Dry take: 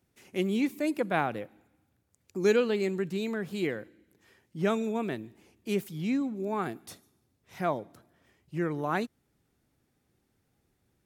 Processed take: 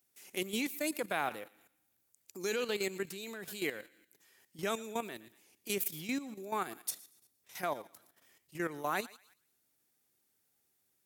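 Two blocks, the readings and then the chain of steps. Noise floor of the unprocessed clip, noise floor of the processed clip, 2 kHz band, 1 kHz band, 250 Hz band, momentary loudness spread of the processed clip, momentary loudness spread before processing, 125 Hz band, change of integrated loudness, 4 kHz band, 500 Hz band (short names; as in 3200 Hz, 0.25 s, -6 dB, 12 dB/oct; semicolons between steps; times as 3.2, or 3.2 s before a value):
-75 dBFS, -77 dBFS, -2.5 dB, -4.5 dB, -10.5 dB, 15 LU, 14 LU, -13.5 dB, -6.5 dB, +1.0 dB, -8.5 dB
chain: RIAA curve recording; thinning echo 0.117 s, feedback 39%, high-pass 1000 Hz, level -16 dB; level quantiser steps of 11 dB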